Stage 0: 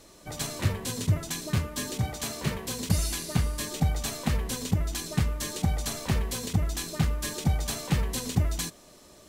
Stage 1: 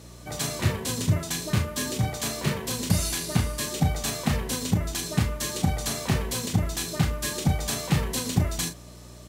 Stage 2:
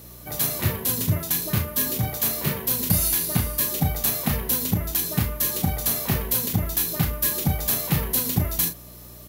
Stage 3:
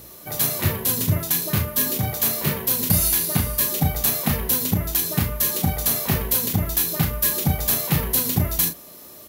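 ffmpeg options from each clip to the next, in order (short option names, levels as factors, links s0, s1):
-filter_complex "[0:a]aeval=exprs='val(0)+0.00501*(sin(2*PI*60*n/s)+sin(2*PI*2*60*n/s)/2+sin(2*PI*3*60*n/s)/3+sin(2*PI*4*60*n/s)/4+sin(2*PI*5*60*n/s)/5)':c=same,highpass=82,asplit=2[s0][s1];[s1]adelay=35,volume=0.447[s2];[s0][s2]amix=inputs=2:normalize=0,volume=1.41"
-af "aexciter=amount=11.7:drive=1.3:freq=11000"
-af "bandreject=f=60:t=h:w=6,bandreject=f=120:t=h:w=6,bandreject=f=180:t=h:w=6,bandreject=f=240:t=h:w=6,bandreject=f=300:t=h:w=6,volume=1.33"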